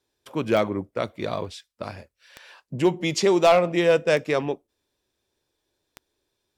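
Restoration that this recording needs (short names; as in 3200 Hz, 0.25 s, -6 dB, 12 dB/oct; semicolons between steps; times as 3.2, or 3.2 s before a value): clip repair -9.5 dBFS; de-click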